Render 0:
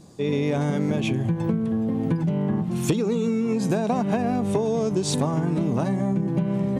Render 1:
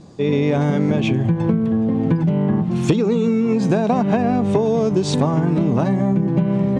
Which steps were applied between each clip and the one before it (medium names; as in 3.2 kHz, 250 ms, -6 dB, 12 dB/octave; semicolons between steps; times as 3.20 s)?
distance through air 94 m; trim +6 dB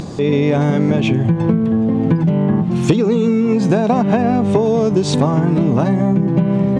upward compressor, threshold -19 dBFS; trim +3 dB